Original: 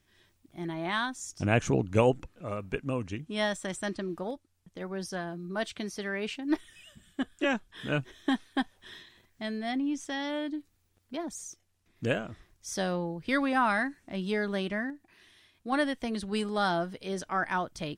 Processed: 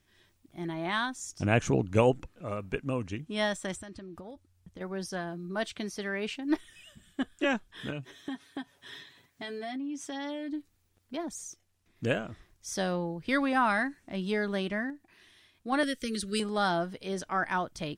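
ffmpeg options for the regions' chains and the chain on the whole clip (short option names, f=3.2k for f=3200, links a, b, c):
-filter_complex "[0:a]asettb=1/sr,asplit=3[a][b][c];[a]atrim=end=3.754[d];[b]atrim=start=3.75:end=4.81,asetpts=PTS-STARTPTS,afade=t=in:d=0.004:c=qsin,afade=t=out:st=1.056:d=0.004:c=qsin,equalizer=f=73:t=o:w=1.2:g=14,acompressor=threshold=-40dB:ratio=12:attack=3.2:release=140:knee=1:detection=peak[e];[c]atrim=start=4.806[f];[d][e]acrossfade=d=0.004:c1=hsin:c2=qsin[g];[g][f]acrossfade=d=0.004:c1=qsin:c2=hsin,asettb=1/sr,asplit=3[h][i][j];[h]atrim=end=7.904[k];[i]atrim=start=7.9:end=10.53,asetpts=PTS-STARTPTS,afade=t=in:d=0.004:c=qsin,afade=t=out:st=2.626:d=0.004:c=qsin,highpass=84,aecho=1:1:7.1:0.74,atrim=end_sample=115983,acompressor=threshold=-34dB:ratio=6:attack=3.2:release=140:knee=1:detection=peak[l];[j]atrim=start=10.526[m];[k][l]acrossfade=d=0.004:c1=hsin:c2=qsin[n];[n][m]acrossfade=d=0.004:c1=qsin:c2=hsin,asettb=1/sr,asplit=3[o][p][q];[o]atrim=end=15.834[r];[p]atrim=start=15.83:end=16.4,asetpts=PTS-STARTPTS,afade=t=in:d=0.004:c=qsin,afade=t=out:st=0.566:d=0.004:c=qsin,asuperstop=centerf=830:order=12:qfactor=1.3,bass=f=250:g=-2,treble=f=4k:g=10[s];[q]atrim=start=16.396[t];[r][s]acrossfade=d=0.004:c1=hsin:c2=qsin[u];[u][t]acrossfade=d=0.004:c1=qsin:c2=hsin"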